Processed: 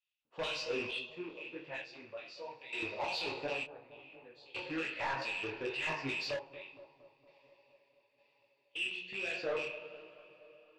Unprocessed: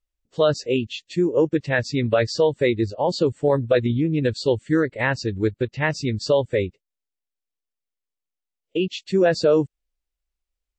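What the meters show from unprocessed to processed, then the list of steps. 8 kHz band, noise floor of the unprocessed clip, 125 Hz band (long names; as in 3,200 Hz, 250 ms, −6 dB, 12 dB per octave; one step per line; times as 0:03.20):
−16.0 dB, −85 dBFS, −29.0 dB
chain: loose part that buzzes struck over −28 dBFS, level −26 dBFS
parametric band 2,600 Hz +12.5 dB 0.24 octaves
hum removal 180.2 Hz, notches 29
brickwall limiter −13.5 dBFS, peak gain reduction 8 dB
auto-filter band-pass square 2.3 Hz 970–3,400 Hz
coupled-rooms reverb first 0.49 s, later 4.4 s, from −20 dB, DRR 3.5 dB
sample-and-hold tremolo 1.1 Hz, depth 95%
soft clipping −36 dBFS, distortion −7 dB
high-frequency loss of the air 90 metres
bucket-brigade delay 232 ms, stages 2,048, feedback 64%, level −16 dB
micro pitch shift up and down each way 41 cents
level +8 dB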